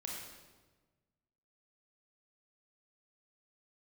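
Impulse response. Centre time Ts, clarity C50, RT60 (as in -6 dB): 72 ms, 0.5 dB, 1.3 s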